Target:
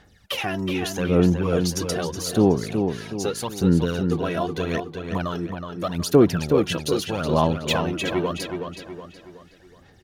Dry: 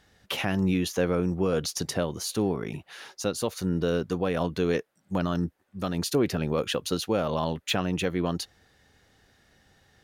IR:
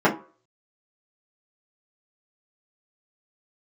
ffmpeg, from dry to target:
-filter_complex "[0:a]aphaser=in_gain=1:out_gain=1:delay=3.1:decay=0.67:speed=0.81:type=sinusoidal,asplit=2[a][b];[b]adelay=371,lowpass=f=4.9k:p=1,volume=-6dB,asplit=2[c][d];[d]adelay=371,lowpass=f=4.9k:p=1,volume=0.44,asplit=2[e][f];[f]adelay=371,lowpass=f=4.9k:p=1,volume=0.44,asplit=2[g][h];[h]adelay=371,lowpass=f=4.9k:p=1,volume=0.44,asplit=2[i][j];[j]adelay=371,lowpass=f=4.9k:p=1,volume=0.44[k];[a][c][e][g][i][k]amix=inputs=6:normalize=0"

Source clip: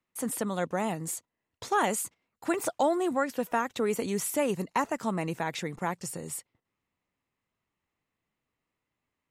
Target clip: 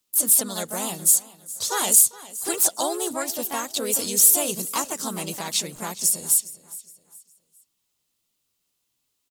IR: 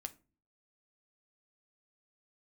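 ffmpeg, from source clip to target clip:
-filter_complex "[0:a]aexciter=amount=9.5:drive=2.4:freq=3k,aecho=1:1:413|826|1239:0.119|0.0404|0.0137,asplit=3[a][b][c];[b]asetrate=52444,aresample=44100,atempo=0.840896,volume=-3dB[d];[c]asetrate=66075,aresample=44100,atempo=0.66742,volume=-17dB[e];[a][d][e]amix=inputs=3:normalize=0,asplit=2[f][g];[1:a]atrim=start_sample=2205[h];[g][h]afir=irnorm=-1:irlink=0,volume=-11.5dB[i];[f][i]amix=inputs=2:normalize=0,volume=-4.5dB"

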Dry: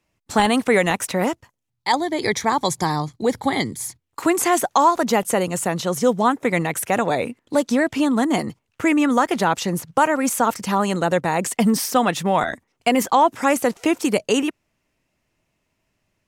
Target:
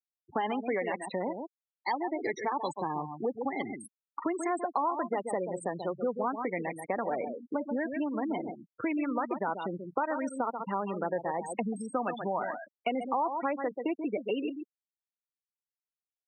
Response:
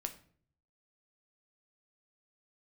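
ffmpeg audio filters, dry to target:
-af "flanger=delay=2:depth=1.5:regen=-85:speed=0.37:shape=triangular,acompressor=mode=upward:threshold=-38dB:ratio=2.5,aecho=1:1:134:0.355,adynamicequalizer=threshold=0.00355:dfrequency=8400:dqfactor=5.2:tfrequency=8400:tqfactor=5.2:attack=5:release=100:ratio=0.375:range=3.5:mode=boostabove:tftype=bell,volume=13dB,asoftclip=hard,volume=-13dB,highshelf=f=4.6k:g=-11,acompressor=threshold=-29dB:ratio=3,afftfilt=real='re*gte(hypot(re,im),0.0355)':imag='im*gte(hypot(re,im),0.0355)':win_size=1024:overlap=0.75,highpass=250"

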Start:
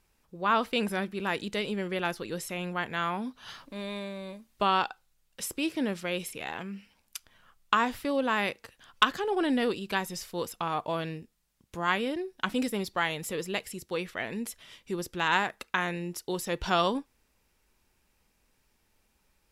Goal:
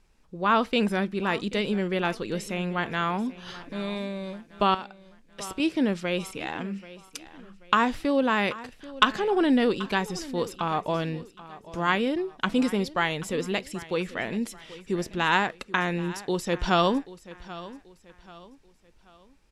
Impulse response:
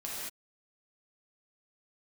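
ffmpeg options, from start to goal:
-filter_complex "[0:a]lowpass=8.1k,equalizer=f=83:w=0.7:g=-7.5,asettb=1/sr,asplit=3[a][b][c];[a]atrim=end=4.744[d];[b]atrim=start=4.74:end=5.6,asetpts=PTS-STARTPTS,afade=t=in:d=0.004:c=qsin,afade=t=out:st=0.856:d=0.004:c=qsin,acompressor=threshold=-37dB:ratio=6[e];[c]atrim=start=5.596[f];[d][e]acrossfade=d=0.004:c1=hsin:c2=qsin[g];[g][f]acrossfade=d=0.004:c1=qsin:c2=hsin,lowshelf=f=270:g=10,aecho=1:1:784|1568|2352:0.133|0.0507|0.0193,volume=2.5dB"

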